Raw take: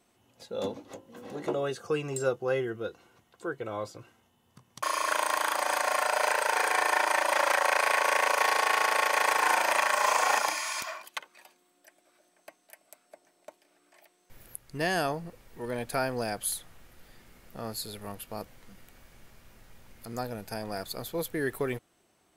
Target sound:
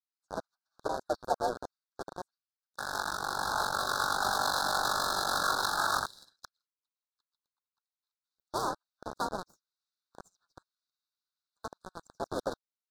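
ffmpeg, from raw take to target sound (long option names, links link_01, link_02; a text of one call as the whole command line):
ffmpeg -i in.wav -filter_complex "[0:a]aeval=exprs='if(lt(val(0),0),0.708*val(0),val(0))':channel_layout=same,highpass=frequency=240:width=0.5412,highpass=frequency=240:width=1.3066,asplit=4[link_01][link_02][link_03][link_04];[link_02]asetrate=37084,aresample=44100,atempo=1.18921,volume=-9dB[link_05];[link_03]asetrate=52444,aresample=44100,atempo=0.840896,volume=-6dB[link_06];[link_04]asetrate=88200,aresample=44100,atempo=0.5,volume=-16dB[link_07];[link_01][link_05][link_06][link_07]amix=inputs=4:normalize=0,afreqshift=-110,acrossover=split=1600[link_08][link_09];[link_08]aeval=exprs='val(0)*gte(abs(val(0)),0.0398)':channel_layout=same[link_10];[link_10][link_09]amix=inputs=2:normalize=0,adynamicsmooth=sensitivity=3:basefreq=620,asuperstop=centerf=1400:order=12:qfactor=1.1,asetrate=76440,aresample=44100" out.wav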